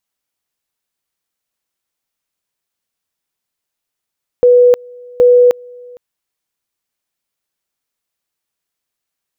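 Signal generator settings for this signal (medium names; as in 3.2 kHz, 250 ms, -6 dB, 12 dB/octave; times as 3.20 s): two-level tone 491 Hz -4 dBFS, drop 27.5 dB, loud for 0.31 s, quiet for 0.46 s, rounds 2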